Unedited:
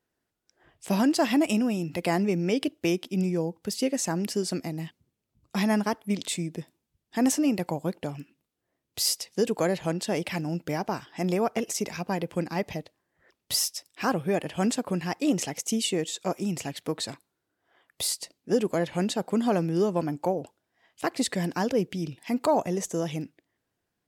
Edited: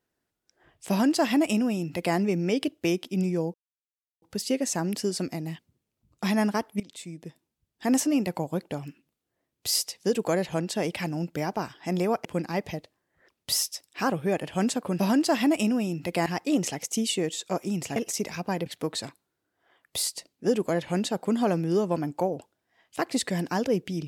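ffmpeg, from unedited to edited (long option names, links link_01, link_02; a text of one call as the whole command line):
ffmpeg -i in.wav -filter_complex "[0:a]asplit=8[link_01][link_02][link_03][link_04][link_05][link_06][link_07][link_08];[link_01]atrim=end=3.54,asetpts=PTS-STARTPTS,afade=type=out:start_time=3.536:duration=0.004:curve=hsin,apad=pad_dur=0.68[link_09];[link_02]atrim=start=3.54:end=6.12,asetpts=PTS-STARTPTS,afade=type=in:duration=0.004:curve=hsin,afade=type=out:start_time=2.576:duration=0.004:curve=hsin:silence=0.125893[link_10];[link_03]atrim=start=6.12:end=11.572,asetpts=PTS-STARTPTS,afade=type=in:duration=1.07:silence=0.125893[link_11];[link_04]atrim=start=12.268:end=15.012[link_12];[link_05]atrim=start=0.888:end=2.162[link_13];[link_06]atrim=start=15.008:end=16.712[link_14];[link_07]atrim=start=11.568:end=12.272[link_15];[link_08]atrim=start=16.708[link_16];[link_09][link_10][link_11]concat=n=3:v=0:a=1[link_17];[link_17][link_12]acrossfade=duration=0.004:curve1=hsin:curve2=hsin[link_18];[link_18][link_13]acrossfade=duration=0.004:curve1=hsin:curve2=hsin[link_19];[link_19][link_14]acrossfade=duration=0.004:curve1=hsin:curve2=hsin[link_20];[link_20][link_15]acrossfade=duration=0.004:curve1=hsin:curve2=hsin[link_21];[link_21][link_16]acrossfade=duration=0.004:curve1=hsin:curve2=hsin" out.wav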